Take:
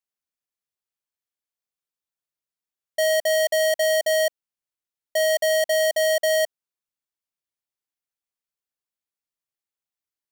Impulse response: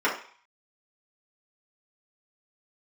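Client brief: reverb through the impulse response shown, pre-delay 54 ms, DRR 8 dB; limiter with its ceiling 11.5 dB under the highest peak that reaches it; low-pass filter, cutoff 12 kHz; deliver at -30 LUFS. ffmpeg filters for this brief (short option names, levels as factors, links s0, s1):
-filter_complex "[0:a]lowpass=12000,alimiter=level_in=1.78:limit=0.0631:level=0:latency=1,volume=0.562,asplit=2[s0][s1];[1:a]atrim=start_sample=2205,adelay=54[s2];[s1][s2]afir=irnorm=-1:irlink=0,volume=0.0708[s3];[s0][s3]amix=inputs=2:normalize=0,volume=1.41"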